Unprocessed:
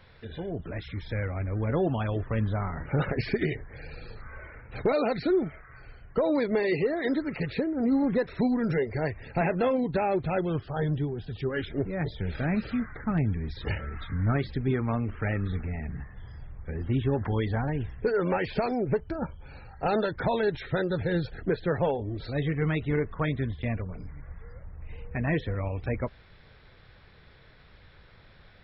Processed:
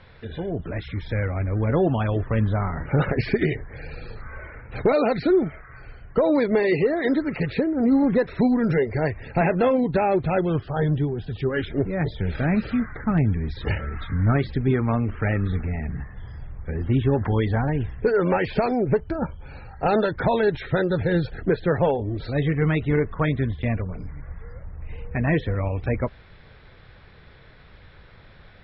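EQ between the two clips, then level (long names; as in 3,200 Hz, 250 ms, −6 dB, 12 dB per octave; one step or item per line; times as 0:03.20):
high-frequency loss of the air 110 metres
+6.0 dB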